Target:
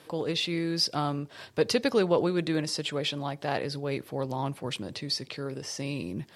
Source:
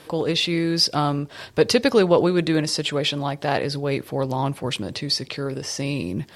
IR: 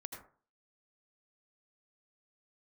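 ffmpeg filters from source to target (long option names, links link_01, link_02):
-af "highpass=83,volume=-7.5dB"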